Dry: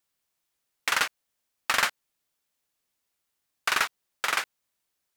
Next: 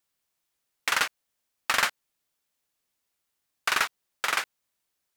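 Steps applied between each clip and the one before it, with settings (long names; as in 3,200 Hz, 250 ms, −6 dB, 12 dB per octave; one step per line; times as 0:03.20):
no processing that can be heard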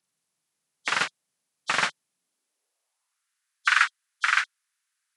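hearing-aid frequency compression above 3,100 Hz 1.5 to 1
high-pass filter sweep 150 Hz → 1,500 Hz, 0:02.12–0:03.26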